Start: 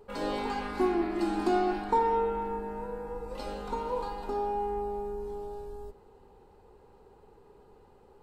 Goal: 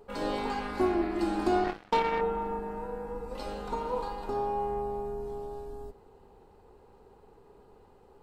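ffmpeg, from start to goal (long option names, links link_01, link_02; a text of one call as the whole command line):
ffmpeg -i in.wav -filter_complex "[0:a]asettb=1/sr,asplit=3[link_01][link_02][link_03];[link_01]atrim=end=1.644[link_04];[link_02]atrim=start=1.64:end=2.21,asetpts=PTS-STARTPTS,afade=type=in:duration=0.004:curve=qsin,afade=type=out:start_time=0.566:duration=0.004:curve=qsin,aeval=exprs='0.178*(cos(1*acos(clip(val(0)/0.178,-1,1)))-cos(1*PI/2))+0.0158*(cos(3*acos(clip(val(0)/0.178,-1,1)))-cos(3*PI/2))+0.02*(cos(7*acos(clip(val(0)/0.178,-1,1)))-cos(7*PI/2))':channel_layout=same[link_05];[link_03]atrim=start=2.206[link_06];[link_04][link_05]acrossfade=duration=0.004:curve1=hsin:curve2=qsin[link_07];[link_07][link_06]acrossfade=duration=0.004:curve1=qsin:curve2=hsin,tremolo=f=280:d=0.4,volume=2dB" out.wav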